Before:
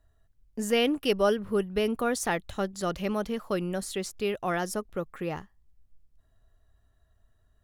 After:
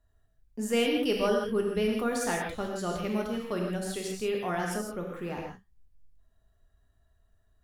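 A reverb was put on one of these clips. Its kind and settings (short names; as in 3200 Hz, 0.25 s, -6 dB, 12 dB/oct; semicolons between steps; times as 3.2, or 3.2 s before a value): non-linear reverb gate 0.19 s flat, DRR -1 dB; gain -5 dB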